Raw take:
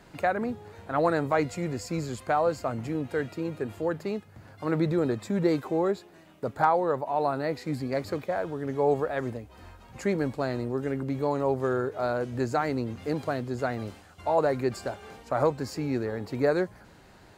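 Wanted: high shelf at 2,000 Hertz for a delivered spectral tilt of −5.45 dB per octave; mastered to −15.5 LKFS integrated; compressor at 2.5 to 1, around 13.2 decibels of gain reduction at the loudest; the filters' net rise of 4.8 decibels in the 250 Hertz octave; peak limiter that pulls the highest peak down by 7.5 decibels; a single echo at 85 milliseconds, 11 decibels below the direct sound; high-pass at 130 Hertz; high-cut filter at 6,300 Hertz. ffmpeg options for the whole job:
ffmpeg -i in.wav -af "highpass=130,lowpass=6300,equalizer=frequency=250:width_type=o:gain=6.5,highshelf=frequency=2000:gain=7.5,acompressor=threshold=-37dB:ratio=2.5,alimiter=level_in=3.5dB:limit=-24dB:level=0:latency=1,volume=-3.5dB,aecho=1:1:85:0.282,volume=22.5dB" out.wav

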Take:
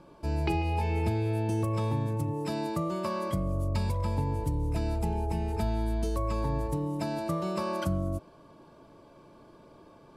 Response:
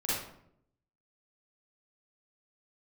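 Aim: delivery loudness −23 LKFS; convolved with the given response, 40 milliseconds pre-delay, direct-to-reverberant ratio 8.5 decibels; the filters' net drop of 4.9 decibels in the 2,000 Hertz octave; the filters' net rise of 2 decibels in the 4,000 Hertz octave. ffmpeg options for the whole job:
-filter_complex "[0:a]equalizer=frequency=2000:width_type=o:gain=-8.5,equalizer=frequency=4000:width_type=o:gain=5,asplit=2[link_01][link_02];[1:a]atrim=start_sample=2205,adelay=40[link_03];[link_02][link_03]afir=irnorm=-1:irlink=0,volume=-15.5dB[link_04];[link_01][link_04]amix=inputs=2:normalize=0,volume=7.5dB"

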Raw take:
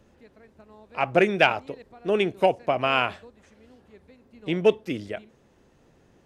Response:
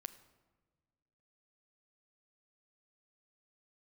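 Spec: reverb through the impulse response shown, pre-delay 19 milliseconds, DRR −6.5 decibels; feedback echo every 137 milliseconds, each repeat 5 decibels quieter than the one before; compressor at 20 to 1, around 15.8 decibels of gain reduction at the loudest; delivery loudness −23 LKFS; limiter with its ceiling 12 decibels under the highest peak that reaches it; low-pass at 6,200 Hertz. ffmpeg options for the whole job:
-filter_complex "[0:a]lowpass=6200,acompressor=threshold=-29dB:ratio=20,alimiter=level_in=4dB:limit=-24dB:level=0:latency=1,volume=-4dB,aecho=1:1:137|274|411|548|685|822|959:0.562|0.315|0.176|0.0988|0.0553|0.031|0.0173,asplit=2[link_01][link_02];[1:a]atrim=start_sample=2205,adelay=19[link_03];[link_02][link_03]afir=irnorm=-1:irlink=0,volume=11dB[link_04];[link_01][link_04]amix=inputs=2:normalize=0,volume=9dB"

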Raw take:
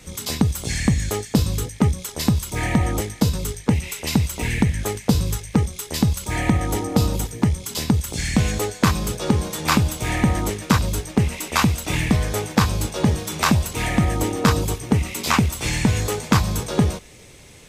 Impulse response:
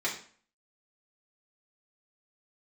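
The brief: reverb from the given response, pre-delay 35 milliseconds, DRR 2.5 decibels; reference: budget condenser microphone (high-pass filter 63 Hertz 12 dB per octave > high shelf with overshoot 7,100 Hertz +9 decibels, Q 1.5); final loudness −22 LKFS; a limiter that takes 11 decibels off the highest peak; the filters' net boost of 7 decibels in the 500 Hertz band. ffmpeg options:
-filter_complex "[0:a]equalizer=frequency=500:width_type=o:gain=8.5,alimiter=limit=-10.5dB:level=0:latency=1,asplit=2[link_01][link_02];[1:a]atrim=start_sample=2205,adelay=35[link_03];[link_02][link_03]afir=irnorm=-1:irlink=0,volume=-10dB[link_04];[link_01][link_04]amix=inputs=2:normalize=0,highpass=63,highshelf=frequency=7100:width_type=q:width=1.5:gain=9,volume=-1.5dB"

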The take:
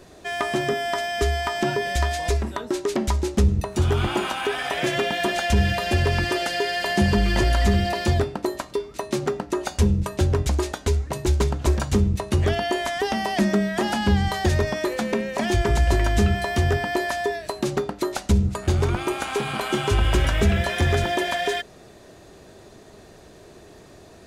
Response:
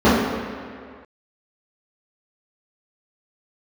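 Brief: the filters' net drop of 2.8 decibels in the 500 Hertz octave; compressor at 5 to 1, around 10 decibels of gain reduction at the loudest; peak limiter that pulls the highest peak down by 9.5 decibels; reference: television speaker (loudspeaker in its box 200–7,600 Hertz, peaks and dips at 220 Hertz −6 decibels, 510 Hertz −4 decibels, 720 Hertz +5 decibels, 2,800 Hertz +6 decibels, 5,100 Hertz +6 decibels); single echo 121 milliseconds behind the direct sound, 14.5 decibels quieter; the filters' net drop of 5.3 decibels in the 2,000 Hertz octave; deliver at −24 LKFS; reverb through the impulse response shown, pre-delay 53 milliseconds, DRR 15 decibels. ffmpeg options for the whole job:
-filter_complex "[0:a]equalizer=frequency=500:width_type=o:gain=-5,equalizer=frequency=2000:width_type=o:gain=-8,acompressor=threshold=-26dB:ratio=5,alimiter=level_in=0.5dB:limit=-24dB:level=0:latency=1,volume=-0.5dB,aecho=1:1:121:0.188,asplit=2[link_01][link_02];[1:a]atrim=start_sample=2205,adelay=53[link_03];[link_02][link_03]afir=irnorm=-1:irlink=0,volume=-42.5dB[link_04];[link_01][link_04]amix=inputs=2:normalize=0,highpass=frequency=200:width=0.5412,highpass=frequency=200:width=1.3066,equalizer=frequency=220:width_type=q:width=4:gain=-6,equalizer=frequency=510:width_type=q:width=4:gain=-4,equalizer=frequency=720:width_type=q:width=4:gain=5,equalizer=frequency=2800:width_type=q:width=4:gain=6,equalizer=frequency=5100:width_type=q:width=4:gain=6,lowpass=frequency=7600:width=0.5412,lowpass=frequency=7600:width=1.3066,volume=9.5dB"

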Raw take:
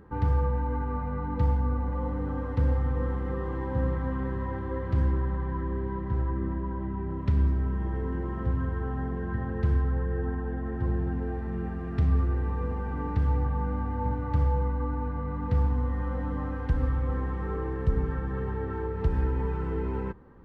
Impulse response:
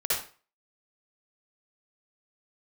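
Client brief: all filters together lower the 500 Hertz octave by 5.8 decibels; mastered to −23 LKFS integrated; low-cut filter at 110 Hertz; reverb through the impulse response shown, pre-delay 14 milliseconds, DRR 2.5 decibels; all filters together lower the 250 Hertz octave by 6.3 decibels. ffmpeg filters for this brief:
-filter_complex "[0:a]highpass=110,equalizer=frequency=250:width_type=o:gain=-7,equalizer=frequency=500:width_type=o:gain=-4.5,asplit=2[link_01][link_02];[1:a]atrim=start_sample=2205,adelay=14[link_03];[link_02][link_03]afir=irnorm=-1:irlink=0,volume=-12dB[link_04];[link_01][link_04]amix=inputs=2:normalize=0,volume=11.5dB"

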